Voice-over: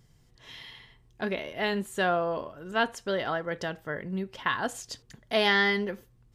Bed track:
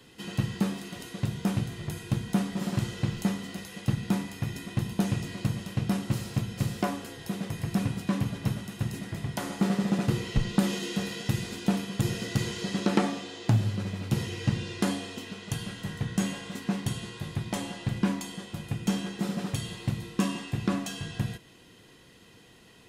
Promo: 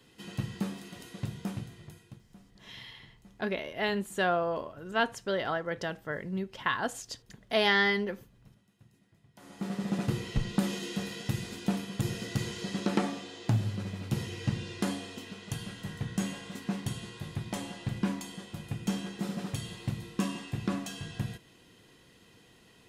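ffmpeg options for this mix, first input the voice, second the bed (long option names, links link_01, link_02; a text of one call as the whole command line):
ffmpeg -i stem1.wav -i stem2.wav -filter_complex "[0:a]adelay=2200,volume=-1.5dB[link_01];[1:a]volume=19.5dB,afade=type=out:start_time=1.24:duration=1:silence=0.0668344,afade=type=in:start_time=9.34:duration=0.65:silence=0.0530884[link_02];[link_01][link_02]amix=inputs=2:normalize=0" out.wav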